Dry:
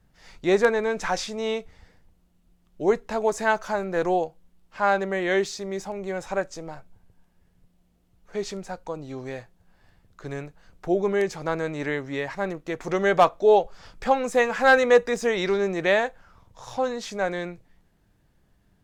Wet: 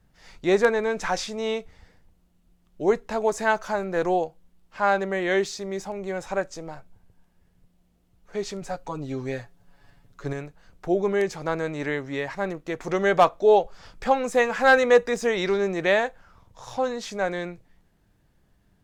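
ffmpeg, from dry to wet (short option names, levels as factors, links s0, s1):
-filter_complex "[0:a]asettb=1/sr,asplit=3[s0][s1][s2];[s0]atrim=end=8.614[s3];[s1]atrim=start=8.61:end=10.33,asetpts=PTS-STARTPTS,afade=t=in:d=0.004:c=qsin,afade=t=out:st=1.716:d=0.004:c=qsin,aecho=1:1:7.1:0.95,atrim=end_sample=75852[s4];[s2]atrim=start=10.326[s5];[s3][s4]acrossfade=d=0.004:c1=hsin:c2=qsin[s6];[s6][s5]acrossfade=d=0.004:c1=qsin:c2=hsin"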